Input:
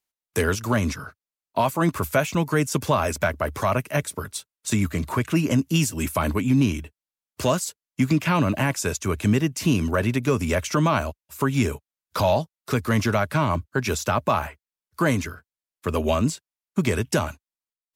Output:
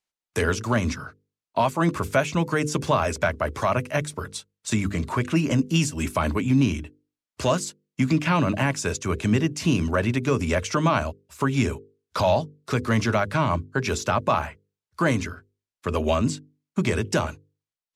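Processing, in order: LPF 7800 Hz 12 dB/oct; notches 50/100/150/200/250/300/350/400/450/500 Hz

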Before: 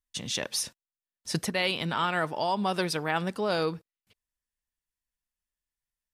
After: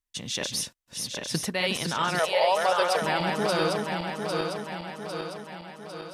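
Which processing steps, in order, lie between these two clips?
regenerating reverse delay 0.401 s, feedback 74%, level -3 dB; 2.19–3.02 resonant low shelf 370 Hz -13 dB, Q 3

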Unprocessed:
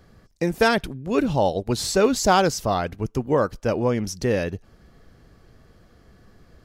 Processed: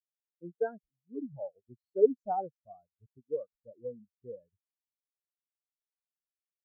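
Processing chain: spectral expander 4:1; gain -4 dB

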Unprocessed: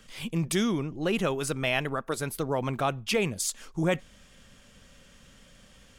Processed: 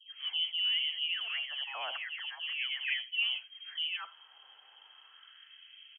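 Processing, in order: limiter -24.5 dBFS, peak gain reduction 11.5 dB; dispersion highs, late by 0.13 s, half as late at 950 Hz; inverted band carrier 3200 Hz; feedback echo 84 ms, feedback 24%, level -22 dB; LFO high-pass sine 0.38 Hz 800–2400 Hz; gain -5 dB

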